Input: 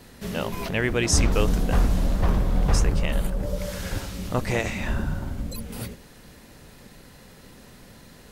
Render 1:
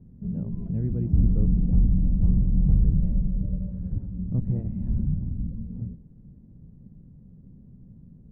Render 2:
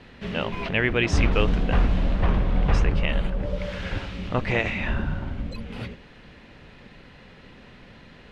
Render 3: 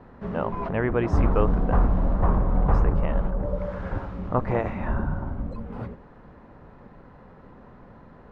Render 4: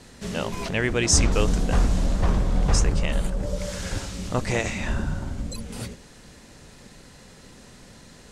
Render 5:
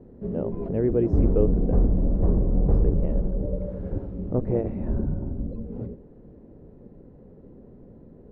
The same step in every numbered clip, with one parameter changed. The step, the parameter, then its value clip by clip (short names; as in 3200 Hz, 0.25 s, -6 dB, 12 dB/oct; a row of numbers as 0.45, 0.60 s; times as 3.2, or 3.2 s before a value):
synth low-pass, frequency: 170, 2800, 1100, 7700, 420 Hz